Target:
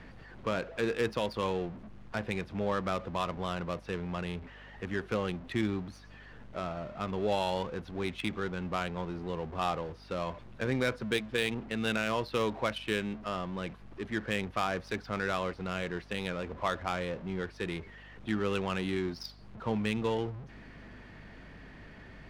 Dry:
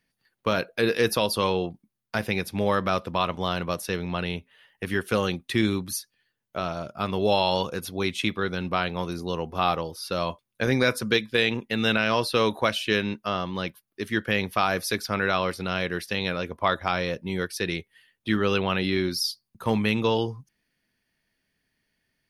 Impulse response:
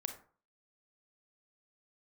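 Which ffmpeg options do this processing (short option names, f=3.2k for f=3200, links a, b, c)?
-af "aeval=exprs='val(0)+0.5*0.0266*sgn(val(0))':c=same,adynamicsmooth=sensitivity=1.5:basefreq=1.5k,aeval=exprs='val(0)+0.00562*(sin(2*PI*50*n/s)+sin(2*PI*2*50*n/s)/2+sin(2*PI*3*50*n/s)/3+sin(2*PI*4*50*n/s)/4+sin(2*PI*5*50*n/s)/5)':c=same,volume=-8.5dB"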